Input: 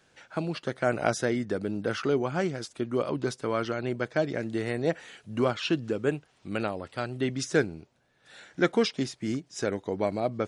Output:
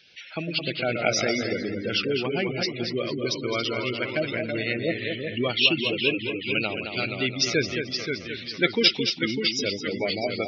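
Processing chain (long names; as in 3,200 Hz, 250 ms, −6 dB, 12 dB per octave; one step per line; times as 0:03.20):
flat-topped bell 3,500 Hz +15.5 dB
delay with pitch and tempo change per echo 80 ms, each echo −1 semitone, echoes 3, each echo −6 dB
gate on every frequency bin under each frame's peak −15 dB strong
on a send: tape delay 216 ms, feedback 32%, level −6 dB, low-pass 3,500 Hz
on the sum: level −1 dB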